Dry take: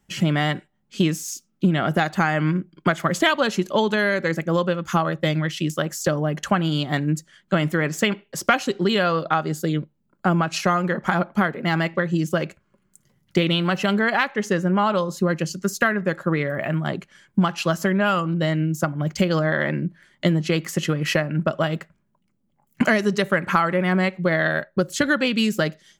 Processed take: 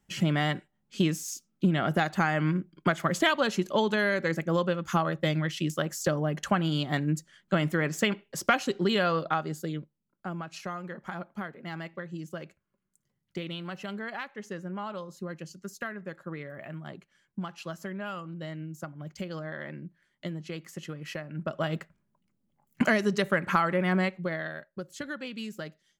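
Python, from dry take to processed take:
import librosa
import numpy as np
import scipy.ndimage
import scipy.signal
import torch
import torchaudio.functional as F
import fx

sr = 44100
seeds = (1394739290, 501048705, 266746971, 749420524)

y = fx.gain(x, sr, db=fx.line((9.18, -5.5), (10.27, -16.5), (21.21, -16.5), (21.75, -5.5), (24.0, -5.5), (24.57, -17.0)))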